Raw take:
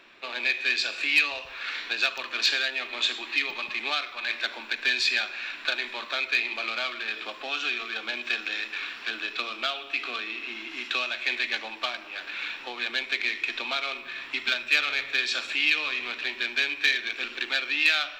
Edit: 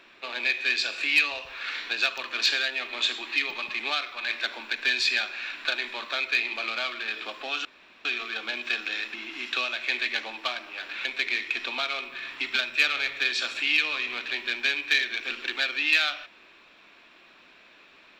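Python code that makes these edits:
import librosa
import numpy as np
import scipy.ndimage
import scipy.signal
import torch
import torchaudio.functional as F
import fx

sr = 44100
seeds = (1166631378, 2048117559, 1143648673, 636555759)

y = fx.edit(x, sr, fx.insert_room_tone(at_s=7.65, length_s=0.4),
    fx.cut(start_s=8.74, length_s=1.78),
    fx.cut(start_s=12.43, length_s=0.55), tone=tone)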